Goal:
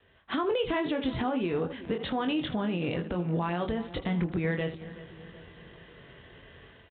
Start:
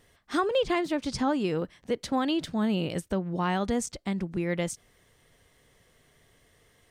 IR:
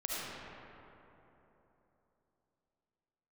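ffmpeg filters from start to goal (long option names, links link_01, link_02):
-filter_complex "[0:a]asetrate=41625,aresample=44100,atempo=1.05946,dynaudnorm=framelen=130:gausssize=5:maxgain=11dB,asplit=2[link_01][link_02];[link_02]aecho=0:1:23|79:0.501|0.15[link_03];[link_01][link_03]amix=inputs=2:normalize=0,acompressor=threshold=-22dB:ratio=8,alimiter=limit=-19.5dB:level=0:latency=1:release=88,adynamicequalizer=threshold=0.00891:dfrequency=200:dqfactor=2.4:tfrequency=200:tqfactor=2.4:attack=5:release=100:ratio=0.375:range=2.5:mode=cutabove:tftype=bell,highpass=43,asplit=2[link_04][link_05];[link_05]adelay=375,lowpass=frequency=1700:poles=1,volume=-15.5dB,asplit=2[link_06][link_07];[link_07]adelay=375,lowpass=frequency=1700:poles=1,volume=0.55,asplit=2[link_08][link_09];[link_09]adelay=375,lowpass=frequency=1700:poles=1,volume=0.55,asplit=2[link_10][link_11];[link_11]adelay=375,lowpass=frequency=1700:poles=1,volume=0.55,asplit=2[link_12][link_13];[link_13]adelay=375,lowpass=frequency=1700:poles=1,volume=0.55[link_14];[link_06][link_08][link_10][link_12][link_14]amix=inputs=5:normalize=0[link_15];[link_04][link_15]amix=inputs=2:normalize=0" -ar 8000 -c:a adpcm_g726 -b:a 40k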